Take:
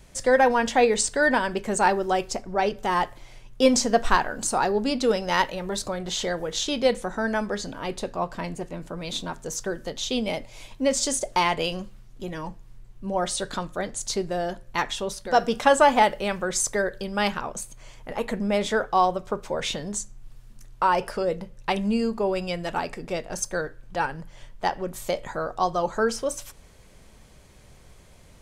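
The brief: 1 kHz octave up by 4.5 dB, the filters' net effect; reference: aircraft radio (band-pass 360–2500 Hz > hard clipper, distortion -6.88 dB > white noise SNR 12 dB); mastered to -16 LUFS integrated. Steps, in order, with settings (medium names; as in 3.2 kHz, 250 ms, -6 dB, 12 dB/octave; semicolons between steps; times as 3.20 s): band-pass 360–2500 Hz; peaking EQ 1 kHz +6 dB; hard clipper -18.5 dBFS; white noise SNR 12 dB; trim +11.5 dB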